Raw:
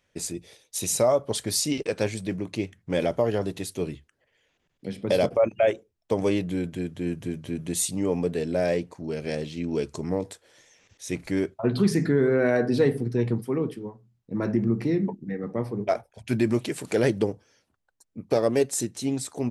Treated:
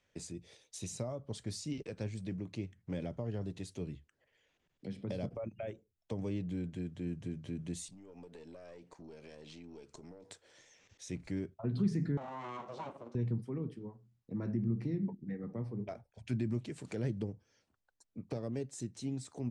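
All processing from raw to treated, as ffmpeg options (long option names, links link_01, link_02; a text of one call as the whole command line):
ffmpeg -i in.wav -filter_complex "[0:a]asettb=1/sr,asplit=3[link_01][link_02][link_03];[link_01]atrim=end=7.884[link_04];[link_02]atrim=start=7.88:end=10.31,asetpts=PTS-STARTPTS,afade=type=in:duration=0.004:curve=qsin,afade=type=out:start_time=2.426:duration=0.004:curve=qsin,highpass=frequency=290:poles=1,acompressor=threshold=-38dB:ratio=12:attack=3.2:release=140:knee=1:detection=peak,aeval=exprs='(tanh(44.7*val(0)+0.55)-tanh(0.55))/44.7':channel_layout=same[link_05];[link_03]atrim=start=10.306[link_06];[link_04][link_05]acrossfade=duration=0.004:curve1=hsin:curve2=qsin[link_07];[link_07][link_06]acrossfade=duration=0.004:curve1=qsin:curve2=hsin,asettb=1/sr,asplit=3[link_08][link_09][link_10];[link_08]atrim=end=12.174[link_11];[link_09]atrim=start=12.17:end=13.15,asetpts=PTS-STARTPTS,afade=type=in:duration=0.004:curve=qsin,afade=type=out:start_time=0.976:duration=0.004:curve=qsin,aeval=exprs='abs(val(0))':channel_layout=same,highpass=370,equalizer=frequency=580:width_type=q:width=4:gain=3,equalizer=frequency=1100:width_type=q:width=4:gain=9,equalizer=frequency=1800:width_type=q:width=4:gain=-7,equalizer=frequency=4800:width_type=q:width=4:gain=-8,lowpass=frequency=7800:width=0.5412,lowpass=frequency=7800:width=1.3066[link_12];[link_10]atrim=start=13.146[link_13];[link_11][link_12]acrossfade=duration=0.004:curve1=hsin:curve2=qsin[link_14];[link_14][link_13]acrossfade=duration=0.004:curve1=qsin:curve2=hsin,lowpass=frequency=8500:width=0.5412,lowpass=frequency=8500:width=1.3066,acrossover=split=220[link_15][link_16];[link_16]acompressor=threshold=-44dB:ratio=2.5[link_17];[link_15][link_17]amix=inputs=2:normalize=0,volume=-5.5dB" out.wav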